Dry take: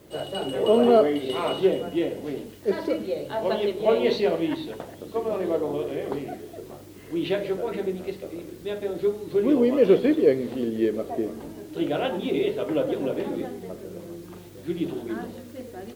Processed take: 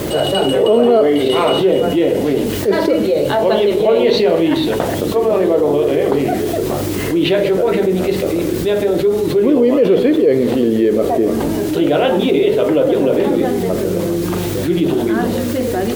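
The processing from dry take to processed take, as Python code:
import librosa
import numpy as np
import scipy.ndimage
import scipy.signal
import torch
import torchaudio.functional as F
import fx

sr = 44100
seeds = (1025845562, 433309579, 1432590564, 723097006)

y = fx.dynamic_eq(x, sr, hz=470.0, q=2.4, threshold_db=-32.0, ratio=4.0, max_db=3)
y = fx.env_flatten(y, sr, amount_pct=70)
y = F.gain(torch.from_numpy(y), 1.5).numpy()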